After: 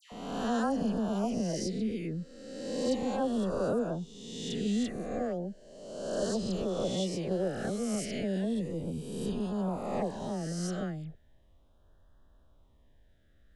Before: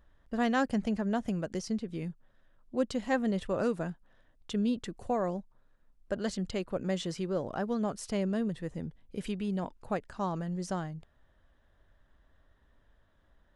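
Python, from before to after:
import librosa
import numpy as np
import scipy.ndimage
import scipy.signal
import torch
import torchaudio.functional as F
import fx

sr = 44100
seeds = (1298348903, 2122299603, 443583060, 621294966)

p1 = fx.spec_swells(x, sr, rise_s=1.38)
p2 = fx.rider(p1, sr, range_db=3, speed_s=0.5)
p3 = p1 + F.gain(torch.from_numpy(p2), -3.0).numpy()
p4 = fx.dispersion(p3, sr, late='lows', ms=120.0, hz=1600.0)
p5 = fx.filter_lfo_notch(p4, sr, shape='sine', hz=0.35, low_hz=930.0, high_hz=2200.0, q=0.75)
p6 = fx.transient(p5, sr, attack_db=8, sustain_db=0, at=(7.26, 7.72))
y = F.gain(torch.from_numpy(p6), -5.5).numpy()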